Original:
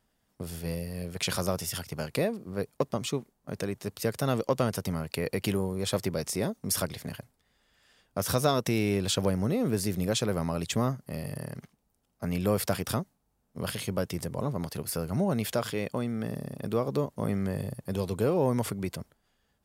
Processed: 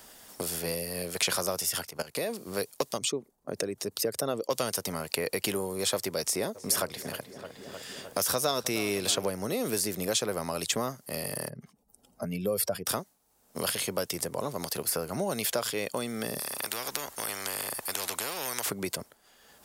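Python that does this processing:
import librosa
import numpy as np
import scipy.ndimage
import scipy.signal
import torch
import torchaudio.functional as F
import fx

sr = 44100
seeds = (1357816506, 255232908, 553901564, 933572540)

y = fx.level_steps(x, sr, step_db=16, at=(1.85, 2.31))
y = fx.envelope_sharpen(y, sr, power=1.5, at=(2.97, 4.49), fade=0.02)
y = fx.echo_filtered(y, sr, ms=308, feedback_pct=59, hz=2600.0, wet_db=-17.0, at=(6.54, 9.28), fade=0.02)
y = fx.spec_expand(y, sr, power=1.8, at=(11.49, 12.86))
y = fx.spectral_comp(y, sr, ratio=4.0, at=(16.39, 18.7))
y = fx.bass_treble(y, sr, bass_db=-13, treble_db=7)
y = fx.band_squash(y, sr, depth_pct=70)
y = y * 10.0 ** (1.0 / 20.0)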